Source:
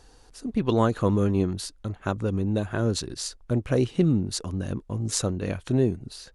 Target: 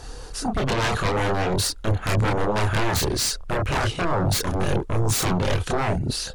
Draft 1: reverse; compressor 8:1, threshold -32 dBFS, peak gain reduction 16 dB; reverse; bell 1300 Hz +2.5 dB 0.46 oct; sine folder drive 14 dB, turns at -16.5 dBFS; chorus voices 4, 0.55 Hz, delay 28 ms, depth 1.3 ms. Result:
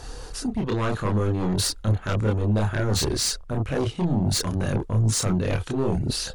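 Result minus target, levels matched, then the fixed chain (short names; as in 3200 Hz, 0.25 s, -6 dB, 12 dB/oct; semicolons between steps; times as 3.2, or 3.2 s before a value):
compressor: peak gain reduction +9 dB
reverse; compressor 8:1, threshold -21.5 dBFS, peak gain reduction 7 dB; reverse; bell 1300 Hz +2.5 dB 0.46 oct; sine folder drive 14 dB, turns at -16.5 dBFS; chorus voices 4, 0.55 Hz, delay 28 ms, depth 1.3 ms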